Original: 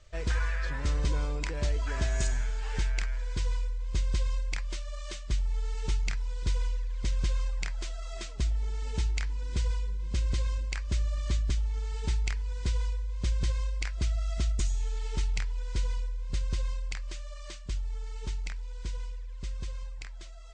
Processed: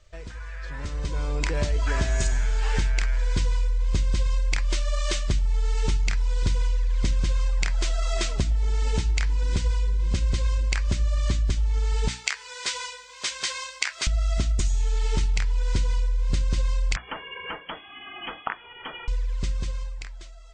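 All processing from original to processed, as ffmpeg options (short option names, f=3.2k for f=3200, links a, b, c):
-filter_complex "[0:a]asettb=1/sr,asplit=3[a][b][c];[a]atrim=end=12.084[d];[b]atrim=start=12.08:end=14.07,asetpts=PTS-STARTPTS,afade=t=in:d=0.004:c=qsin,afade=t=out:st=1.986:d=0.004:c=qsin,highpass=980,asplit=2[e][f];[f]adelay=14,volume=-9dB[g];[e][g]amix=inputs=2:normalize=0,atrim=end_sample=87759[h];[c]atrim=start=14.066[i];[d][h]acrossfade=d=0.004:c1=hsin:c2=qsin[j];[j][i]acrossfade=d=0.004:c1=qsin:c2=hsin,asettb=1/sr,asplit=3[k][l][m];[k]atrim=end=16.964[n];[l]atrim=start=16.96:end=19.08,asetpts=PTS-STARTPTS,afade=t=in:d=0.004:c=qsin,afade=t=out:st=2.116:d=0.004:c=qsin,highpass=f=380:p=1,aemphasis=mode=production:type=riaa,lowpass=f=2.9k:t=q:w=0.5098,lowpass=f=2.9k:t=q:w=0.6013,lowpass=f=2.9k:t=q:w=0.9,lowpass=f=2.9k:t=q:w=2.563,afreqshift=-3400[o];[m]atrim=start=19.076[p];[n][o]acrossfade=d=0.004:c1=hsin:c2=qsin[q];[q][p]acrossfade=d=0.004:c1=qsin:c2=hsin,acompressor=threshold=-35dB:ratio=6,bandreject=f=60:t=h:w=6,bandreject=f=120:t=h:w=6,bandreject=f=180:t=h:w=6,bandreject=f=240:t=h:w=6,bandreject=f=300:t=h:w=6,dynaudnorm=f=200:g=11:m=15dB"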